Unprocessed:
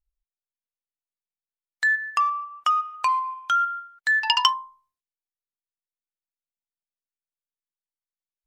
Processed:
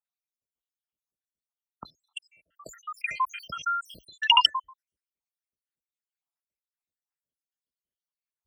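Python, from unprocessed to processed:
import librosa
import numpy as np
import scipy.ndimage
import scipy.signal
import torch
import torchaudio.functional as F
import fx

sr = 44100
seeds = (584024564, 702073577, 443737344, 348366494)

y = fx.spec_dropout(x, sr, seeds[0], share_pct=84)
y = scipy.signal.sosfilt(scipy.signal.butter(4, 44.0, 'highpass', fs=sr, output='sos'), y)
y = fx.low_shelf(y, sr, hz=470.0, db=10.0)
y = fx.sustainer(y, sr, db_per_s=110.0, at=(2.53, 4.16))
y = y * 10.0 ** (3.5 / 20.0)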